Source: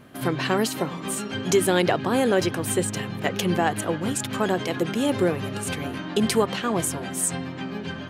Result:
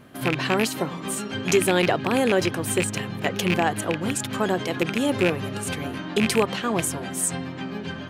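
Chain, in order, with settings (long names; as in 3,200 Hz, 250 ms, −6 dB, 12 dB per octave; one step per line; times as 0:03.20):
loose part that buzzes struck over −24 dBFS, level −12 dBFS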